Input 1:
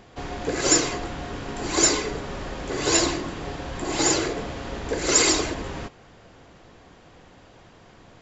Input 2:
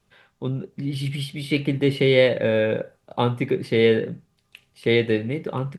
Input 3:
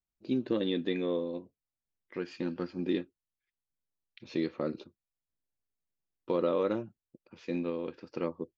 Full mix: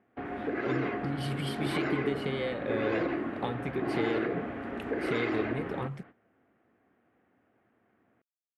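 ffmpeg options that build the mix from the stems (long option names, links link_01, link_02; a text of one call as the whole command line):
ffmpeg -i stem1.wav -i stem2.wav -filter_complex "[0:a]volume=-1.5dB[link_01];[1:a]acompressor=threshold=-28dB:ratio=6,adelay=250,volume=-3dB[link_02];[link_01]highpass=150,equalizer=frequency=160:width_type=q:width=4:gain=-8,equalizer=frequency=240:width_type=q:width=4:gain=5,equalizer=frequency=530:width_type=q:width=4:gain=-5,equalizer=frequency=970:width_type=q:width=4:gain=-8,lowpass=frequency=2100:width=0.5412,lowpass=frequency=2100:width=1.3066,alimiter=limit=-22.5dB:level=0:latency=1:release=58,volume=0dB[link_03];[link_02][link_03]amix=inputs=2:normalize=0,agate=range=-15dB:threshold=-49dB:ratio=16:detection=peak" out.wav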